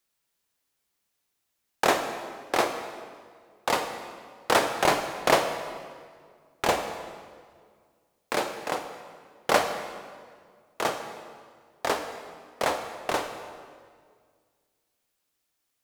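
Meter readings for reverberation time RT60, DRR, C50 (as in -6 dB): 1.9 s, 6.0 dB, 7.5 dB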